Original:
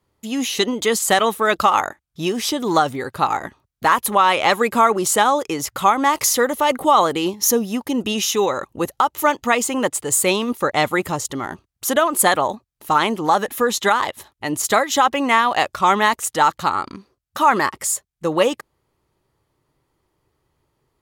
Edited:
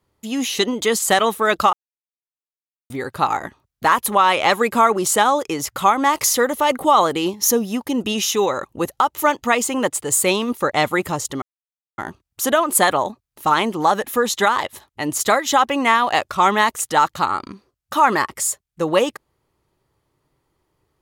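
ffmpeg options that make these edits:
ffmpeg -i in.wav -filter_complex "[0:a]asplit=4[link_01][link_02][link_03][link_04];[link_01]atrim=end=1.73,asetpts=PTS-STARTPTS,afade=type=out:start_time=1.726:duration=0.004:curve=hsin[link_05];[link_02]atrim=start=1.73:end=2.9,asetpts=PTS-STARTPTS,volume=0[link_06];[link_03]atrim=start=2.9:end=11.42,asetpts=PTS-STARTPTS,afade=type=in:duration=0.004:curve=hsin,afade=type=out:start_time=8.516:duration=0.004:curve=hsin,apad=pad_dur=0.56[link_07];[link_04]atrim=start=11.42,asetpts=PTS-STARTPTS,afade=type=in:duration=0.004:curve=hsin[link_08];[link_05][link_06][link_07][link_08]concat=n=4:v=0:a=1" out.wav

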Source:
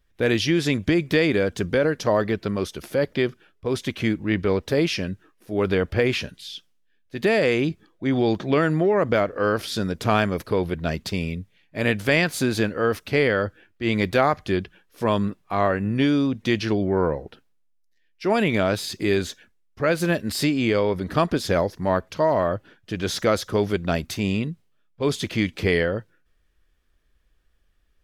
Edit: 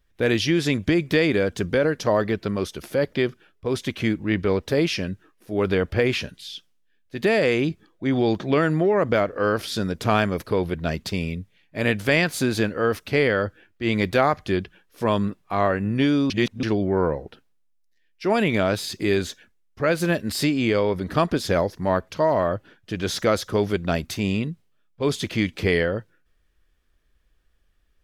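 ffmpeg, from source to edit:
ffmpeg -i in.wav -filter_complex "[0:a]asplit=3[link_01][link_02][link_03];[link_01]atrim=end=16.302[link_04];[link_02]atrim=start=16.298:end=16.632,asetpts=PTS-STARTPTS,areverse[link_05];[link_03]atrim=start=16.628[link_06];[link_04][link_05]acrossfade=duration=0.004:curve1=hsin:curve2=hsin[link_07];[link_07][link_06]acrossfade=duration=0.004:curve1=hsin:curve2=hsin" out.wav

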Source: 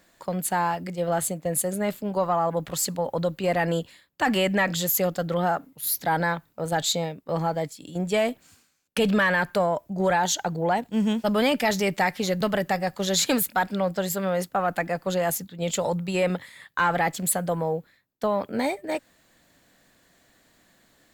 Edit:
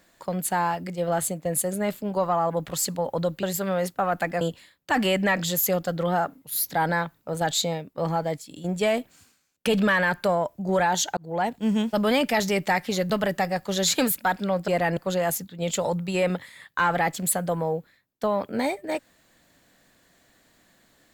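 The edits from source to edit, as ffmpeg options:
ffmpeg -i in.wav -filter_complex "[0:a]asplit=6[link_01][link_02][link_03][link_04][link_05][link_06];[link_01]atrim=end=3.432[link_07];[link_02]atrim=start=13.988:end=14.972[link_08];[link_03]atrim=start=3.718:end=10.48,asetpts=PTS-STARTPTS,afade=type=out:start_time=6.758:duration=0.004:curve=hsin[link_09];[link_04]atrim=start=10.48:end=13.992,asetpts=PTS-STARTPTS,afade=type=in:duration=0.3[link_10];[link_05]atrim=start=3.428:end=3.722[link_11];[link_06]atrim=start=14.968[link_12];[link_07][link_08]acrossfade=duration=0.004:curve1=hsin:curve2=hsin[link_13];[link_09][link_10]concat=n=2:v=0:a=1[link_14];[link_13][link_14]acrossfade=duration=0.004:curve1=hsin:curve2=hsin[link_15];[link_15][link_11]acrossfade=duration=0.004:curve1=hsin:curve2=hsin[link_16];[link_16][link_12]acrossfade=duration=0.004:curve1=hsin:curve2=hsin" out.wav

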